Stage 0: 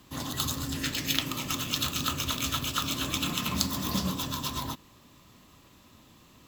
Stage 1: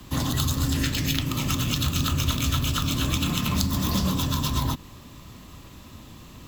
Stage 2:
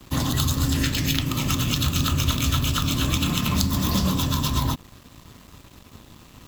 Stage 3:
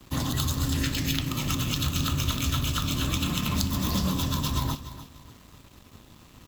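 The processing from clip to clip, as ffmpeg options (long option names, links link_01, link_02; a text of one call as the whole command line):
ffmpeg -i in.wav -filter_complex "[0:a]acrossover=split=300[link_01][link_02];[link_01]alimiter=level_in=8.5dB:limit=-24dB:level=0:latency=1,volume=-8.5dB[link_03];[link_03][link_02]amix=inputs=2:normalize=0,lowshelf=frequency=130:gain=10.5,acrossover=split=230[link_04][link_05];[link_05]acompressor=threshold=-36dB:ratio=3[link_06];[link_04][link_06]amix=inputs=2:normalize=0,volume=8.5dB" out.wav
ffmpeg -i in.wav -af "aeval=exprs='sgn(val(0))*max(abs(val(0))-0.00398,0)':channel_layout=same,volume=2.5dB" out.wav
ffmpeg -i in.wav -af "aecho=1:1:294|588|882:0.211|0.055|0.0143,volume=-4.5dB" out.wav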